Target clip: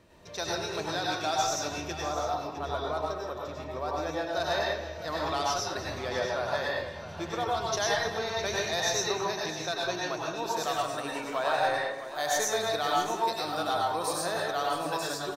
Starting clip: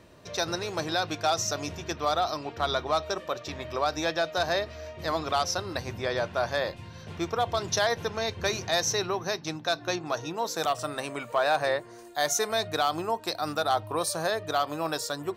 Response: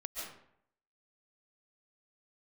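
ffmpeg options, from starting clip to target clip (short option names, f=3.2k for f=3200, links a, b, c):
-filter_complex "[0:a]asettb=1/sr,asplit=3[a][b][c];[a]atrim=end=1.954[d];[b]atrim=start=1.95:end=4.3,asetpts=PTS-STARTPTS,afade=t=in:d=0.004:c=qsin,afade=t=out:st=2.346:d=0.004:c=qsin,equalizer=f=4.1k:t=o:w=2.9:g=-9.5[e];[c]atrim=start=4.296[f];[d][e]acrossfade=d=0.004:c1=hsin:c2=qsin[g];[g][f]acrossfade=d=0.004:c1=qsin:c2=hsin,aecho=1:1:208|658:0.188|0.237[h];[1:a]atrim=start_sample=2205,asetrate=61740,aresample=44100[i];[h][i]afir=irnorm=-1:irlink=0,volume=1.5dB"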